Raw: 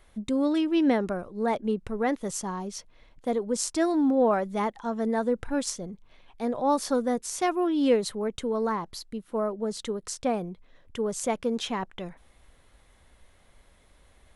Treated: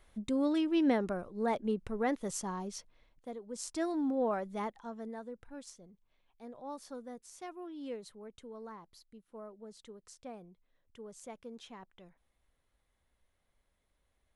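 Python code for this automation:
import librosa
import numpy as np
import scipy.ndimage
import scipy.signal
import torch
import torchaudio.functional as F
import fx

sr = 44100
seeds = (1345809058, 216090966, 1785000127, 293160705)

y = fx.gain(x, sr, db=fx.line((2.74, -5.5), (3.42, -18.0), (3.73, -9.5), (4.66, -9.5), (5.32, -19.5)))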